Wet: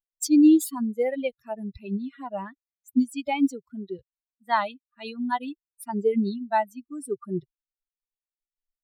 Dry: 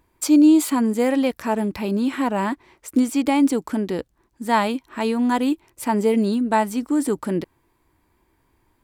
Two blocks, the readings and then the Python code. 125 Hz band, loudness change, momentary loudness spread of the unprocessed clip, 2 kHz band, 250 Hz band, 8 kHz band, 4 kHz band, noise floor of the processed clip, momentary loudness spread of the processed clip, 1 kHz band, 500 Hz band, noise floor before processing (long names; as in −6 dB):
−7.0 dB, −5.0 dB, 10 LU, −6.5 dB, −5.5 dB, −5.5 dB, −7.5 dB, below −85 dBFS, 19 LU, −5.0 dB, −5.5 dB, −66 dBFS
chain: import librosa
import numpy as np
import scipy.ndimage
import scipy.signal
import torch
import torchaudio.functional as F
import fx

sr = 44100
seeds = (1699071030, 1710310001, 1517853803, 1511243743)

y = fx.bin_expand(x, sr, power=3.0)